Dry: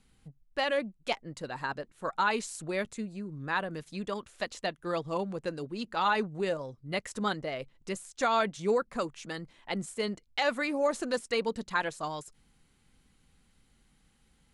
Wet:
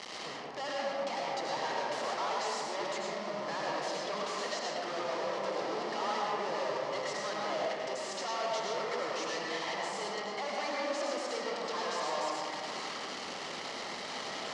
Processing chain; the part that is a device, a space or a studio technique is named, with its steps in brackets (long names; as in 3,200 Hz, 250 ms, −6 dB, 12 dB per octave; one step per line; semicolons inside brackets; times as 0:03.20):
home computer beeper (sign of each sample alone; loudspeaker in its box 590–5,200 Hz, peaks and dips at 1,500 Hz −10 dB, 2,500 Hz −8 dB, 3,600 Hz −7 dB)
comb and all-pass reverb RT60 2.3 s, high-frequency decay 0.35×, pre-delay 60 ms, DRR −4 dB